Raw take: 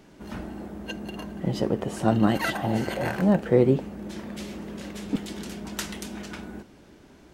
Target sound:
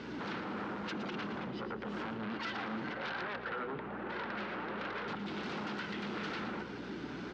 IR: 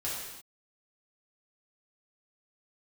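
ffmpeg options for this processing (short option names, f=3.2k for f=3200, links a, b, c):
-filter_complex "[0:a]acrossover=split=3600[a][b];[b]acompressor=threshold=-53dB:ratio=4:attack=1:release=60[c];[a][c]amix=inputs=2:normalize=0,asettb=1/sr,asplit=3[d][e][f];[d]atrim=end=2.934[g];[e]atrim=start=2.93:end=5.08,asetpts=PTS-STARTPTS,afade=t=in:d=0.004:c=qsin,afade=t=out:st=2.146:d=0.004:c=qsin,acrossover=split=530 2100:gain=0.112 1 0.0708[h][i][j];[h][i][j]amix=inputs=3:normalize=0[k];[f]atrim=start=5.076[l];[g][k]acrossfade=d=0.004:c1=hsin:c2=qsin[m];[m][l]acrossfade=d=0.004:c1=qsin:c2=hsin,acompressor=threshold=-38dB:ratio=2.5,alimiter=level_in=9dB:limit=-24dB:level=0:latency=1:release=495,volume=-9dB,flanger=delay=1.9:depth=4.9:regen=50:speed=1.2:shape=sinusoidal,aeval=exprs='val(0)+0.00112*(sin(2*PI*60*n/s)+sin(2*PI*2*60*n/s)/2+sin(2*PI*3*60*n/s)/3+sin(2*PI*4*60*n/s)/4+sin(2*PI*5*60*n/s)/5)':c=same,aeval=exprs='0.0237*sin(PI/2*5.62*val(0)/0.0237)':c=same,highpass=160,equalizer=f=220:t=q:w=4:g=3,equalizer=f=640:t=q:w=4:g=-7,equalizer=f=1.4k:t=q:w=4:g=6,lowpass=f=4.8k:w=0.5412,lowpass=f=4.8k:w=1.3066,aecho=1:1:115|230|345|460|575:0.316|0.142|0.064|0.0288|0.013,volume=-3.5dB"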